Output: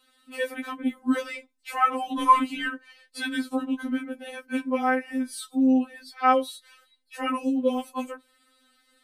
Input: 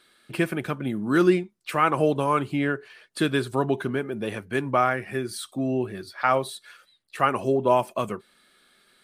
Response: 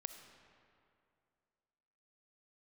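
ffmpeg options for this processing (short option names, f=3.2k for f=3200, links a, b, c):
-filter_complex "[0:a]asplit=3[a][b][c];[a]afade=t=out:st=2.13:d=0.02[d];[b]acontrast=84,afade=t=in:st=2.13:d=0.02,afade=t=out:st=2.67:d=0.02[e];[c]afade=t=in:st=2.67:d=0.02[f];[d][e][f]amix=inputs=3:normalize=0,afftfilt=real='re*3.46*eq(mod(b,12),0)':imag='im*3.46*eq(mod(b,12),0)':win_size=2048:overlap=0.75"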